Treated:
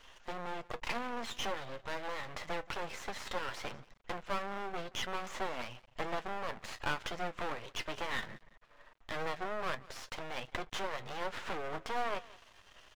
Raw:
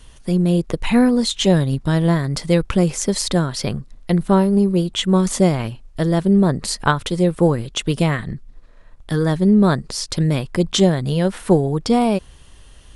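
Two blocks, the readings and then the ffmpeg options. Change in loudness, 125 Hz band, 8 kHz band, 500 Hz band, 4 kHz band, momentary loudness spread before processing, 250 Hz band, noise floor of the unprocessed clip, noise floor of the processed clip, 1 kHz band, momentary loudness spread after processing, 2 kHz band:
-21.5 dB, -33.0 dB, -22.5 dB, -21.0 dB, -17.0 dB, 8 LU, -32.0 dB, -45 dBFS, -63 dBFS, -12.5 dB, 7 LU, -10.0 dB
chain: -filter_complex "[0:a]acompressor=threshold=-17dB:ratio=6,aresample=16000,volume=24dB,asoftclip=hard,volume=-24dB,aresample=44100,flanger=delay=7.5:depth=2.5:regen=60:speed=0.2:shape=triangular,equalizer=f=4.5k:w=2.7:g=-9.5,acrossover=split=2900[a][b];[b]acompressor=threshold=-45dB:ratio=4:attack=1:release=60[c];[a][c]amix=inputs=2:normalize=0,acrossover=split=550 4100:gain=0.0794 1 0.251[d][e][f];[d][e][f]amix=inputs=3:normalize=0,asplit=2[g][h];[h]aecho=0:1:178|356:0.0891|0.0258[i];[g][i]amix=inputs=2:normalize=0,aeval=exprs='max(val(0),0)':c=same,volume=6.5dB"

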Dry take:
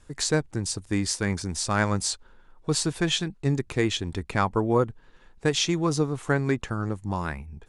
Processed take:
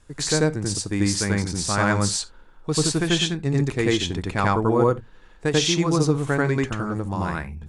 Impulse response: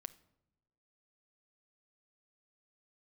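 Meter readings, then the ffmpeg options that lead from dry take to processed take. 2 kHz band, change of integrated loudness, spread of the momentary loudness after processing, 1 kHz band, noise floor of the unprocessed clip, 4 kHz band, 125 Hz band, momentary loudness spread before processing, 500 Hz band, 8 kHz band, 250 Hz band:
+4.0 dB, +4.0 dB, 7 LU, +4.0 dB, -56 dBFS, +4.0 dB, +4.5 dB, 6 LU, +4.0 dB, +4.0 dB, +4.5 dB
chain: -filter_complex "[0:a]asplit=2[a][b];[1:a]atrim=start_sample=2205,atrim=end_sample=3528,adelay=90[c];[b][c]afir=irnorm=-1:irlink=0,volume=6.5dB[d];[a][d]amix=inputs=2:normalize=0"

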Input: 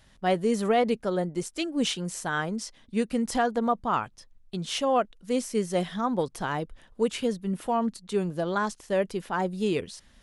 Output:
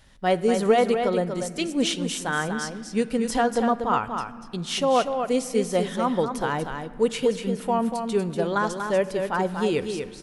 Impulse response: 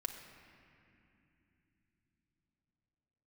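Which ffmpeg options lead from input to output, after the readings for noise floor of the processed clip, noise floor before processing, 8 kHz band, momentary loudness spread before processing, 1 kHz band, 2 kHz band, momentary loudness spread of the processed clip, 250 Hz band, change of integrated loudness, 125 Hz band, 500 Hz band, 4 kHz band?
-41 dBFS, -59 dBFS, +3.5 dB, 7 LU, +3.5 dB, +4.0 dB, 7 LU, +2.5 dB, +3.5 dB, +2.5 dB, +4.5 dB, +3.5 dB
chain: -filter_complex "[0:a]aecho=1:1:240:0.473,asplit=2[a][b];[1:a]atrim=start_sample=2205[c];[b][c]afir=irnorm=-1:irlink=0,volume=-5.5dB[d];[a][d]amix=inputs=2:normalize=0"

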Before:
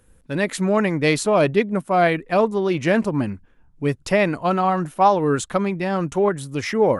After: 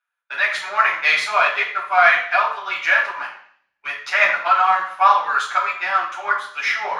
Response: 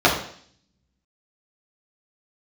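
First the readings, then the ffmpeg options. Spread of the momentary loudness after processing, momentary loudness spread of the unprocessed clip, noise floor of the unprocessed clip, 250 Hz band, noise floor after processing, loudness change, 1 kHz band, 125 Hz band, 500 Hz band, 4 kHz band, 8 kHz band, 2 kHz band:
9 LU, 8 LU, -56 dBFS, under -30 dB, -77 dBFS, +3.0 dB, +4.5 dB, under -30 dB, -10.0 dB, +5.5 dB, n/a, +10.5 dB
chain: -filter_complex "[0:a]highpass=f=1.3k:w=0.5412,highpass=f=1.3k:w=1.3066,agate=range=-18dB:threshold=-57dB:ratio=16:detection=peak,highshelf=f=3.2k:g=-12,asplit=2[a][b];[b]aeval=exprs='sgn(val(0))*max(abs(val(0))-0.00668,0)':c=same,volume=-3dB[c];[a][c]amix=inputs=2:normalize=0,flanger=delay=4.7:depth=4.6:regen=51:speed=1.9:shape=triangular,asoftclip=type=tanh:threshold=-15dB[d];[1:a]atrim=start_sample=2205[e];[d][e]afir=irnorm=-1:irlink=0,volume=-6dB"

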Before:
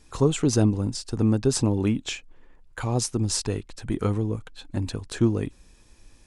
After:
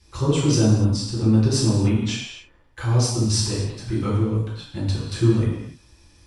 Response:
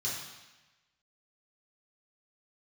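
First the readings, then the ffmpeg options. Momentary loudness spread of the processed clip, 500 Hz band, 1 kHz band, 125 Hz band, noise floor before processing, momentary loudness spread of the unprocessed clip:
12 LU, +1.0 dB, +2.0 dB, +6.5 dB, -55 dBFS, 12 LU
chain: -filter_complex "[1:a]atrim=start_sample=2205,afade=t=out:st=0.3:d=0.01,atrim=end_sample=13671,asetrate=36603,aresample=44100[a];[0:a][a]afir=irnorm=-1:irlink=0,volume=-3dB"

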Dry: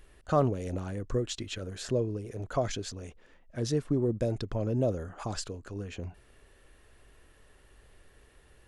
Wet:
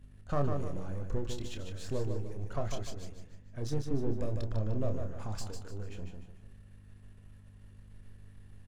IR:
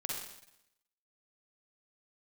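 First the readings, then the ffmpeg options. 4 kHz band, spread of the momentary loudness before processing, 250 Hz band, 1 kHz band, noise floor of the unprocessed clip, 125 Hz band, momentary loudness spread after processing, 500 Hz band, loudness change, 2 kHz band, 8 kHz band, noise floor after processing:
-7.5 dB, 12 LU, -6.0 dB, -6.5 dB, -60 dBFS, -2.5 dB, 22 LU, -7.0 dB, -5.0 dB, -6.5 dB, -7.5 dB, -55 dBFS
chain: -filter_complex "[0:a]aeval=exprs='if(lt(val(0),0),0.447*val(0),val(0))':c=same,lowshelf=f=140:g=12,aeval=exprs='val(0)+0.00447*(sin(2*PI*50*n/s)+sin(2*PI*2*50*n/s)/2+sin(2*PI*3*50*n/s)/3+sin(2*PI*4*50*n/s)/4+sin(2*PI*5*50*n/s)/5)':c=same,asplit=2[a][b];[b]adelay=28,volume=-7.5dB[c];[a][c]amix=inputs=2:normalize=0,aecho=1:1:150|300|450|600|750:0.501|0.19|0.0724|0.0275|0.0105,volume=-7dB"

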